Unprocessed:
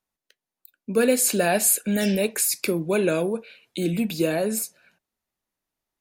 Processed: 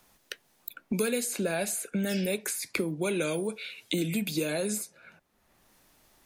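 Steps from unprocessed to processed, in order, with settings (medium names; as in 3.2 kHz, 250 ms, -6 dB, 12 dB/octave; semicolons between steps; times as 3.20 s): speed mistake 25 fps video run at 24 fps; three bands compressed up and down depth 100%; trim -7.5 dB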